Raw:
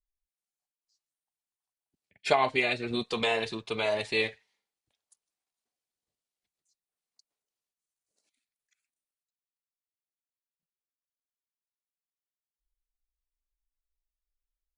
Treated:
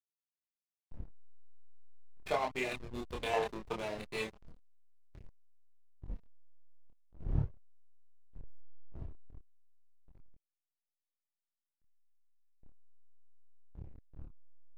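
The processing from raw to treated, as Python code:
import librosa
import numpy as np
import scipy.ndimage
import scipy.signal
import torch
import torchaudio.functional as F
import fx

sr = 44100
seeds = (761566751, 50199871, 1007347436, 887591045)

p1 = fx.dmg_wind(x, sr, seeds[0], corner_hz=130.0, level_db=-38.0)
p2 = fx.peak_eq(p1, sr, hz=880.0, db=14.0, octaves=1.4, at=(3.33, 3.79))
p3 = p2 + fx.echo_feedback(p2, sr, ms=998, feedback_pct=24, wet_db=-18.0, dry=0)
p4 = fx.backlash(p3, sr, play_db=-23.5)
p5 = fx.chorus_voices(p4, sr, voices=2, hz=0.19, base_ms=26, depth_ms=3.2, mix_pct=45)
y = p5 * librosa.db_to_amplitude(-4.5)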